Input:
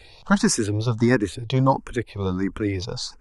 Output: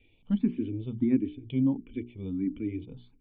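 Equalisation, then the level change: cascade formant filter i; hum notches 60/120/180/240/300/360/420 Hz; 0.0 dB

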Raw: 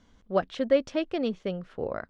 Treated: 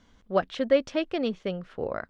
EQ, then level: peaking EQ 2.3 kHz +3 dB 2.9 oct; 0.0 dB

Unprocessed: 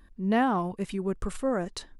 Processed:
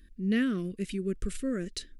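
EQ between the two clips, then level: Butterworth band-stop 850 Hz, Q 0.58; peaking EQ 120 Hz -8 dB 0.82 oct; +1.0 dB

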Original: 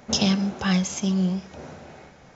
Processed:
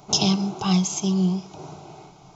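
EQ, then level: static phaser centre 350 Hz, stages 8; +4.5 dB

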